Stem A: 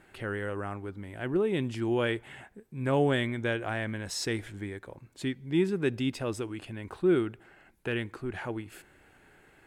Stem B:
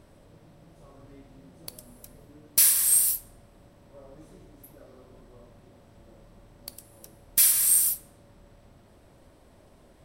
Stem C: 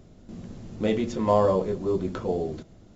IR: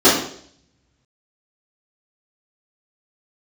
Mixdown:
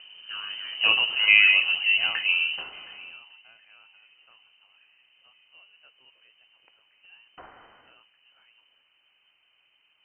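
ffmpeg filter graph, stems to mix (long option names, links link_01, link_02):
-filter_complex "[0:a]flanger=delay=5.8:depth=1.4:regen=-62:speed=1.5:shape=triangular,volume=-3.5dB[link_01];[1:a]volume=-11.5dB[link_02];[2:a]volume=2.5dB,asplit=3[link_03][link_04][link_05];[link_04]volume=-21dB[link_06];[link_05]apad=whole_len=426207[link_07];[link_01][link_07]sidechaingate=range=-22dB:threshold=-38dB:ratio=16:detection=peak[link_08];[link_06]aecho=0:1:721|1442|2163|2884:1|0.24|0.0576|0.0138[link_09];[link_08][link_02][link_03][link_09]amix=inputs=4:normalize=0,highshelf=frequency=2100:gain=11,lowpass=frequency=2600:width_type=q:width=0.5098,lowpass=frequency=2600:width_type=q:width=0.6013,lowpass=frequency=2600:width_type=q:width=0.9,lowpass=frequency=2600:width_type=q:width=2.563,afreqshift=-3100"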